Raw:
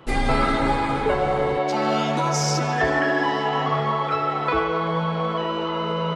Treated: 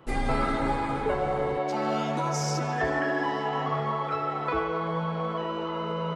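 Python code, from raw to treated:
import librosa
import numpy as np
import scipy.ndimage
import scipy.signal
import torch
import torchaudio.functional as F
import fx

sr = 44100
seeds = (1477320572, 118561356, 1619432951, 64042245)

y = fx.peak_eq(x, sr, hz=3700.0, db=-4.5, octaves=1.6)
y = y * 10.0 ** (-5.5 / 20.0)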